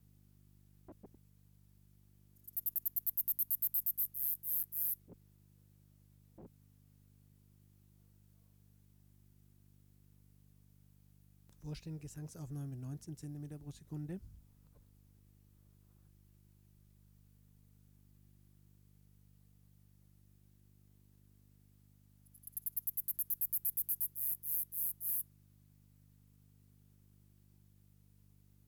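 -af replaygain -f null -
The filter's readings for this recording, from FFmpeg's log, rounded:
track_gain = +33.5 dB
track_peak = 0.070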